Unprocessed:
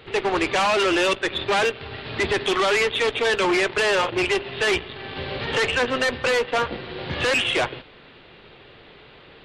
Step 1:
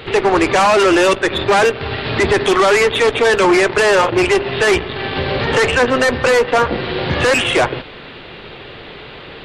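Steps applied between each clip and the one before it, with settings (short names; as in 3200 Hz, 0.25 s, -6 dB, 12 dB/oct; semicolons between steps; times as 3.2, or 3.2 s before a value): dynamic EQ 3200 Hz, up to -7 dB, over -38 dBFS, Q 1.1; in parallel at +2.5 dB: limiter -24.5 dBFS, peak gain reduction 9.5 dB; on the sum: gain +6 dB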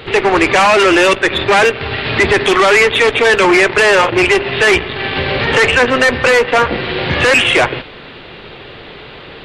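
dynamic EQ 2300 Hz, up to +6 dB, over -31 dBFS, Q 1.2; gain +1 dB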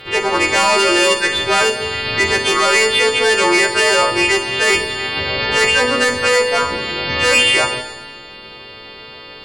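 frequency quantiser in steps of 2 st; Schroeder reverb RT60 1.2 s, combs from 25 ms, DRR 6 dB; gain -6.5 dB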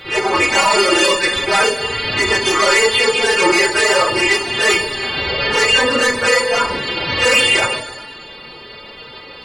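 phase scrambler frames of 50 ms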